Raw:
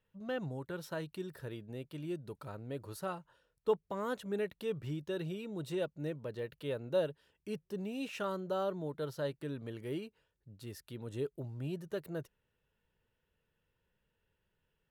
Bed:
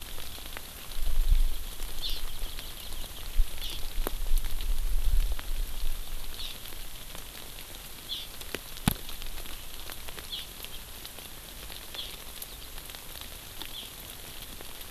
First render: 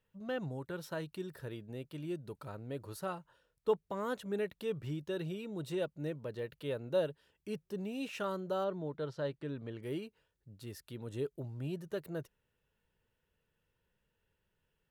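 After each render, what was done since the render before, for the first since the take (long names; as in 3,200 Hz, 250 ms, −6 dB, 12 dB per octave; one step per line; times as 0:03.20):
0:08.64–0:09.83: high-frequency loss of the air 94 metres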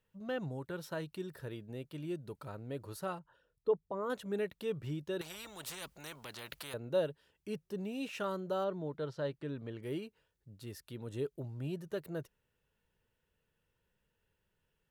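0:03.19–0:04.10: spectral envelope exaggerated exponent 1.5
0:05.21–0:06.74: every bin compressed towards the loudest bin 4 to 1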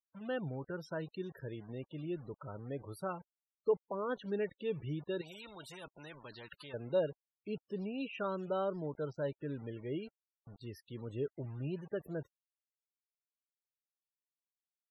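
bit reduction 9 bits
spectral peaks only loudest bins 32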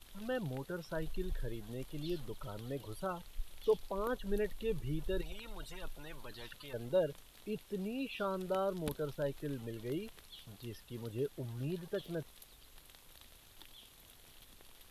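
mix in bed −16.5 dB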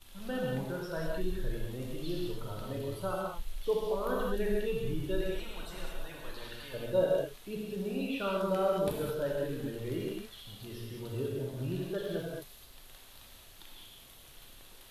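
reverb whose tail is shaped and stops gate 240 ms flat, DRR −3.5 dB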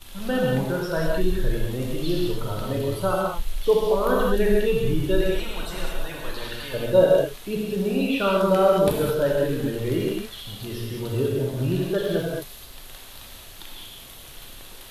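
level +11.5 dB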